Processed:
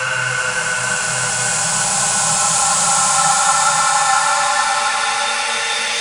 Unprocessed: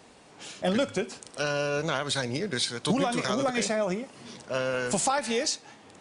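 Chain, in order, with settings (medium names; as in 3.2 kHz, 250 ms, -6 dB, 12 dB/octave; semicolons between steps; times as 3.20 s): FFT filter 160 Hz 0 dB, 260 Hz -28 dB, 1 kHz +6 dB; sine folder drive 3 dB, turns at -8 dBFS; Paulstretch 11×, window 0.50 s, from 4.77 s; trim +2 dB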